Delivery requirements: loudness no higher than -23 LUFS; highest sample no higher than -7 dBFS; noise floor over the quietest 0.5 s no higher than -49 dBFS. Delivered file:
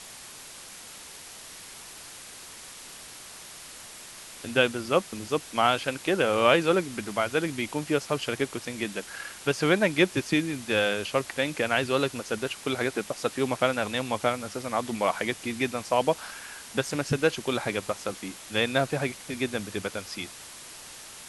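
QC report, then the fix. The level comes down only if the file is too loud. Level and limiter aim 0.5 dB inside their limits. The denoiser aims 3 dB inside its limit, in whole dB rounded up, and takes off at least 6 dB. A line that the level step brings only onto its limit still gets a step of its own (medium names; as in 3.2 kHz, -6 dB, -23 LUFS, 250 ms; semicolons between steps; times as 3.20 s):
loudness -27.5 LUFS: pass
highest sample -6.0 dBFS: fail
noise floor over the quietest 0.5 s -45 dBFS: fail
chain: noise reduction 7 dB, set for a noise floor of -45 dBFS; peak limiter -7.5 dBFS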